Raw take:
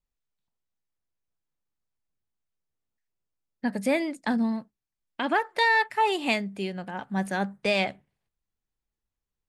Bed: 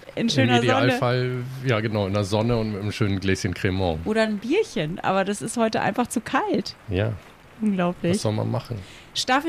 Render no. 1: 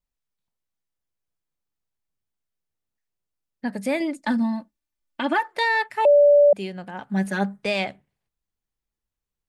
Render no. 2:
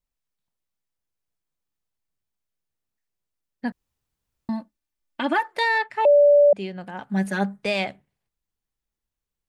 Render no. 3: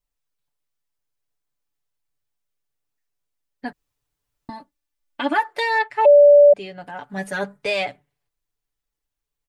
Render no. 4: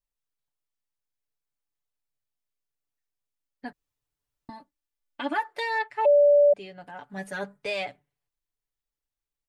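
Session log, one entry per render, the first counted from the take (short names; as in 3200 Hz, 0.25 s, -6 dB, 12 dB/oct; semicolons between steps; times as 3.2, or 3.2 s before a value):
4–5.48 comb 3.4 ms, depth 82%; 6.05–6.53 bleep 580 Hz -10.5 dBFS; 7.09–7.64 comb 4.8 ms, depth 93%
3.72–4.49 room tone; 5.78–6.81 air absorption 81 m
bell 190 Hz -7.5 dB 0.76 oct; comb 6.9 ms, depth 71%
gain -7.5 dB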